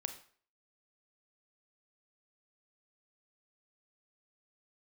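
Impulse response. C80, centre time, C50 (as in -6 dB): 14.5 dB, 11 ms, 10.5 dB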